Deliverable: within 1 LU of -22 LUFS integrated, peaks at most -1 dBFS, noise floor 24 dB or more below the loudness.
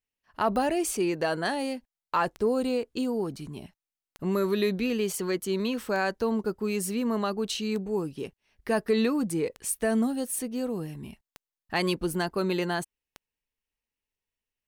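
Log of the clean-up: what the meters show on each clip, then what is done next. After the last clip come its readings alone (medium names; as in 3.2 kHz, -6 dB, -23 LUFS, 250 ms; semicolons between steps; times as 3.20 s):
clicks found 8; loudness -28.5 LUFS; peak level -13.0 dBFS; loudness target -22.0 LUFS
-> de-click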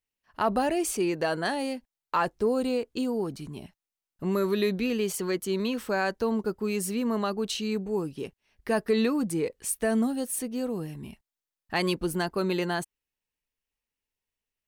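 clicks found 0; loudness -28.5 LUFS; peak level -13.0 dBFS; loudness target -22.0 LUFS
-> trim +6.5 dB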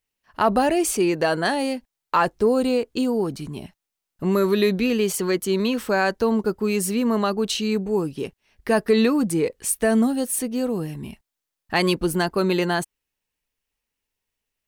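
loudness -22.0 LUFS; peak level -6.5 dBFS; noise floor -84 dBFS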